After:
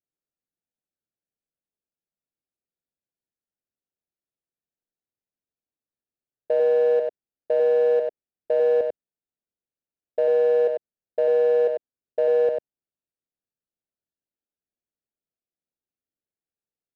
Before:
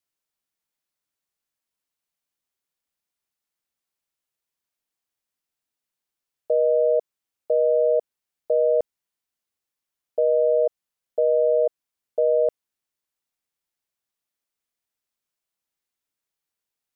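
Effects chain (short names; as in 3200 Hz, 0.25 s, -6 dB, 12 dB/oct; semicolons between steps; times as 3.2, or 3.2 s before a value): Wiener smoothing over 41 samples; low shelf 130 Hz -4.5 dB; echo 96 ms -5 dB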